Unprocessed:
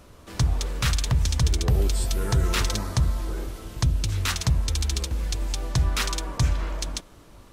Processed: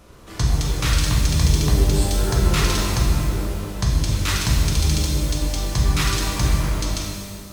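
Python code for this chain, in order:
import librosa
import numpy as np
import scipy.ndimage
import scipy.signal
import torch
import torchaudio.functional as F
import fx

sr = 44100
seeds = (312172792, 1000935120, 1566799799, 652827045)

y = fx.rev_shimmer(x, sr, seeds[0], rt60_s=1.7, semitones=12, shimmer_db=-8, drr_db=-3.0)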